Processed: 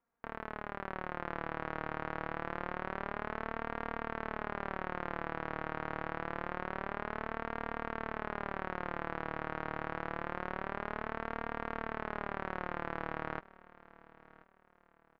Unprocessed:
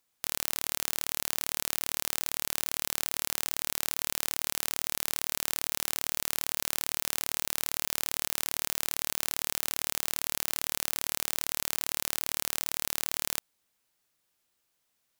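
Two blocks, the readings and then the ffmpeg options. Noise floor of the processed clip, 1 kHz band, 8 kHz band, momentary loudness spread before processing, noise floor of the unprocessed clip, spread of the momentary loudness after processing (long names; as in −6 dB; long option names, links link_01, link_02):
−67 dBFS, +5.0 dB, below −40 dB, 0 LU, −77 dBFS, 3 LU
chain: -af "lowpass=frequency=1600:width=0.5412,lowpass=frequency=1600:width=1.3066,dynaudnorm=framelen=110:gausssize=17:maxgain=4dB,flanger=delay=4.3:depth=2:regen=40:speed=0.26:shape=sinusoidal,aecho=1:1:1033|2066|3099:0.0944|0.033|0.0116,volume=5dB"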